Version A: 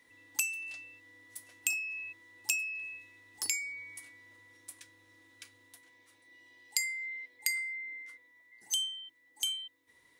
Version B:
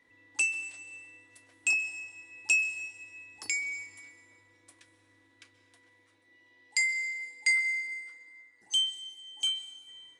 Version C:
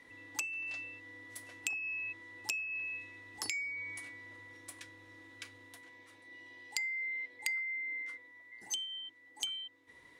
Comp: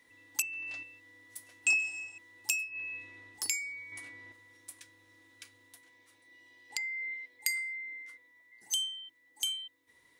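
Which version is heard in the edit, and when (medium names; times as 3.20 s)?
A
0.42–0.83 s: from C
1.66–2.18 s: from B
2.70–3.33 s: from C, crossfade 0.16 s
3.92–4.32 s: from C
6.70–7.14 s: from C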